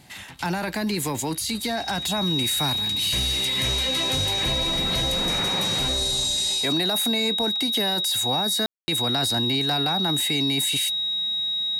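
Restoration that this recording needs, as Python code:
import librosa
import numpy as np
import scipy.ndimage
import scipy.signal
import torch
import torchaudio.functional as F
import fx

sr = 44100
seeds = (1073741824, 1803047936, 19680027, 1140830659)

y = fx.notch(x, sr, hz=3800.0, q=30.0)
y = fx.fix_ambience(y, sr, seeds[0], print_start_s=0.0, print_end_s=0.5, start_s=8.66, end_s=8.88)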